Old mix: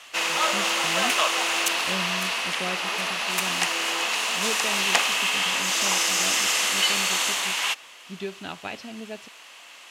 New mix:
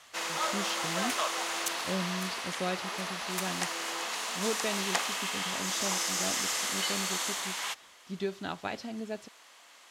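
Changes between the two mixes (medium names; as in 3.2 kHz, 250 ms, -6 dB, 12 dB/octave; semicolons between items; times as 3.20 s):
background -7.0 dB; master: add peaking EQ 2.7 kHz -8.5 dB 0.44 oct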